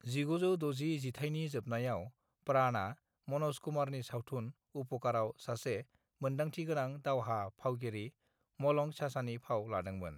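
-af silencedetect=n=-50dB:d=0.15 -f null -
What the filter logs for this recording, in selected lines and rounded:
silence_start: 2.09
silence_end: 2.47 | silence_duration: 0.38
silence_start: 2.94
silence_end: 3.28 | silence_duration: 0.34
silence_start: 4.51
silence_end: 4.75 | silence_duration: 0.24
silence_start: 5.82
silence_end: 6.21 | silence_duration: 0.39
silence_start: 8.09
silence_end: 8.60 | silence_duration: 0.51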